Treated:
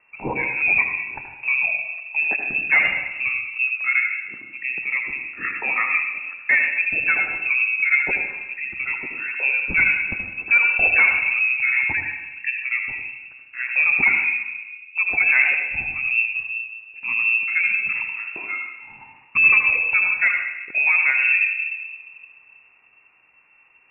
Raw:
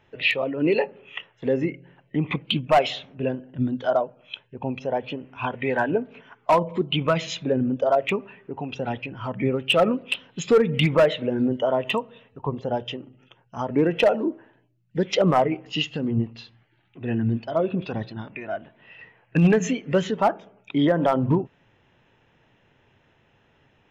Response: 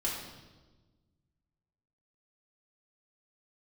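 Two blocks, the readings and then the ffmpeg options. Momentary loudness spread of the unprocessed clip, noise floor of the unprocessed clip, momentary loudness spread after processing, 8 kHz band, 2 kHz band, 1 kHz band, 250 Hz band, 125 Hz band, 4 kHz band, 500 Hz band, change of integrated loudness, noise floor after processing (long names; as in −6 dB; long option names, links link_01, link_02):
13 LU, −63 dBFS, 13 LU, below −35 dB, +16.0 dB, −7.5 dB, −18.5 dB, below −15 dB, below −10 dB, −19.0 dB, +5.0 dB, −54 dBFS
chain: -filter_complex "[0:a]equalizer=frequency=78:width=2.1:gain=12.5,asplit=2[link_01][link_02];[1:a]atrim=start_sample=2205,adelay=76[link_03];[link_02][link_03]afir=irnorm=-1:irlink=0,volume=-8.5dB[link_04];[link_01][link_04]amix=inputs=2:normalize=0,lowpass=frequency=2400:width_type=q:width=0.5098,lowpass=frequency=2400:width_type=q:width=0.6013,lowpass=frequency=2400:width_type=q:width=0.9,lowpass=frequency=2400:width_type=q:width=2.563,afreqshift=-2800"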